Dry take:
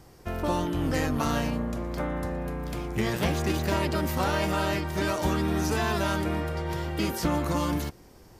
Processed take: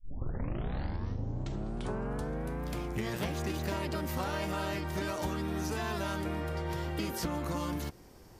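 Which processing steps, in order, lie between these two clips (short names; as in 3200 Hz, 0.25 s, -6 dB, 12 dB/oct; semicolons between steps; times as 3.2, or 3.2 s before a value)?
tape start at the beginning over 2.65 s; compressor, threshold -28 dBFS, peak gain reduction 7.5 dB; gain -2.5 dB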